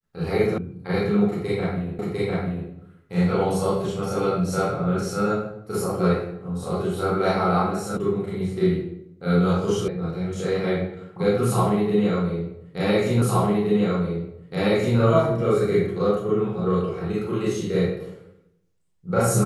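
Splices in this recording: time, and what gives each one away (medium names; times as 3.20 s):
0.58 s: sound stops dead
1.99 s: repeat of the last 0.7 s
7.97 s: sound stops dead
9.88 s: sound stops dead
13.22 s: repeat of the last 1.77 s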